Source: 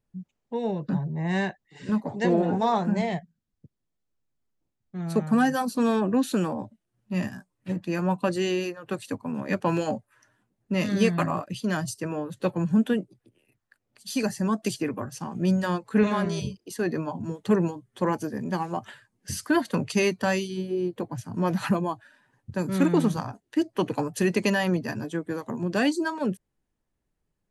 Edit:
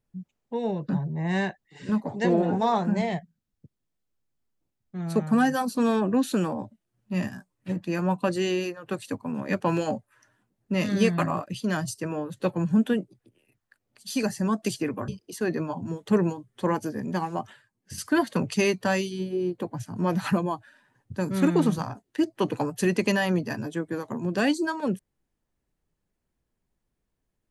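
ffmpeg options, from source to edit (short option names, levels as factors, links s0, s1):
-filter_complex "[0:a]asplit=4[s0][s1][s2][s3];[s0]atrim=end=15.082[s4];[s1]atrim=start=16.458:end=18.882[s5];[s2]atrim=start=18.878:end=19.362,asetpts=PTS-STARTPTS,volume=0.447[s6];[s3]atrim=start=19.358[s7];[s4][s5]acrossfade=d=0.004:c1=hsin:c2=hsin[s8];[s8][s6]acrossfade=d=0.004:c1=hsin:c2=hsin[s9];[s9][s7]acrossfade=d=0.004:c1=hsin:c2=hsin"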